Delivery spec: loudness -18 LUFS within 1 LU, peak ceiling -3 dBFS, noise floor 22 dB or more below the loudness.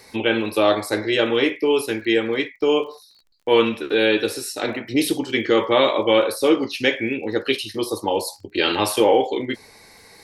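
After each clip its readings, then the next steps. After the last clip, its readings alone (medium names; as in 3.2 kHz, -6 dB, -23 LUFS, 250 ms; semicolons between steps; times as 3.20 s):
tick rate 34 per s; loudness -20.5 LUFS; peak level -3.0 dBFS; loudness target -18.0 LUFS
-> de-click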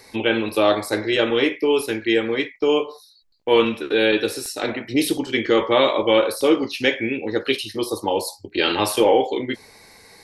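tick rate 0.49 per s; loudness -20.5 LUFS; peak level -3.0 dBFS; loudness target -18.0 LUFS
-> trim +2.5 dB; peak limiter -3 dBFS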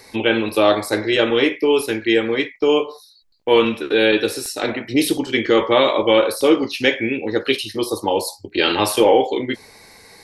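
loudness -18.0 LUFS; peak level -3.0 dBFS; noise floor -49 dBFS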